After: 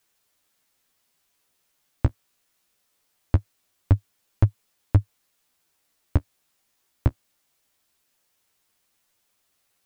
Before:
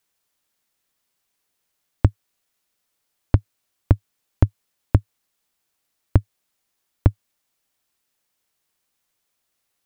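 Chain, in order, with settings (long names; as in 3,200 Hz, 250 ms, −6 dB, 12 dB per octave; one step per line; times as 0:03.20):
brickwall limiter −10.5 dBFS, peak gain reduction 8.5 dB
flanger 0.22 Hz, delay 8.7 ms, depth 7.5 ms, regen +21%
level +7.5 dB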